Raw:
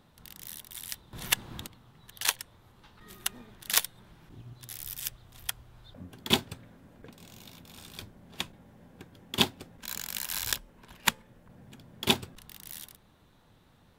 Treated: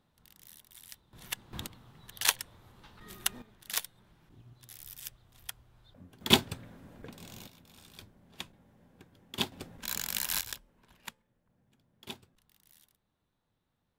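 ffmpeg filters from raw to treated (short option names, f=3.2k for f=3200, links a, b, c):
-af "asetnsamples=n=441:p=0,asendcmd='1.53 volume volume 1dB;3.42 volume volume -8dB;6.21 volume volume 2.5dB;7.47 volume volume -7.5dB;9.52 volume volume 2dB;10.41 volume volume -10.5dB;11.06 volume volume -19dB',volume=-11dB"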